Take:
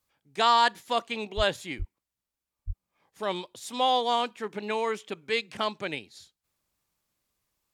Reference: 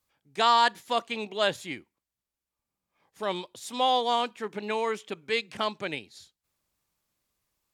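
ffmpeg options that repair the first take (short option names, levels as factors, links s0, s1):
-filter_complex "[0:a]asplit=3[s0][s1][s2];[s0]afade=t=out:st=1.36:d=0.02[s3];[s1]highpass=f=140:w=0.5412,highpass=f=140:w=1.3066,afade=t=in:st=1.36:d=0.02,afade=t=out:st=1.48:d=0.02[s4];[s2]afade=t=in:st=1.48:d=0.02[s5];[s3][s4][s5]amix=inputs=3:normalize=0,asplit=3[s6][s7][s8];[s6]afade=t=out:st=1.78:d=0.02[s9];[s7]highpass=f=140:w=0.5412,highpass=f=140:w=1.3066,afade=t=in:st=1.78:d=0.02,afade=t=out:st=1.9:d=0.02[s10];[s8]afade=t=in:st=1.9:d=0.02[s11];[s9][s10][s11]amix=inputs=3:normalize=0,asplit=3[s12][s13][s14];[s12]afade=t=out:st=2.66:d=0.02[s15];[s13]highpass=f=140:w=0.5412,highpass=f=140:w=1.3066,afade=t=in:st=2.66:d=0.02,afade=t=out:st=2.78:d=0.02[s16];[s14]afade=t=in:st=2.78:d=0.02[s17];[s15][s16][s17]amix=inputs=3:normalize=0"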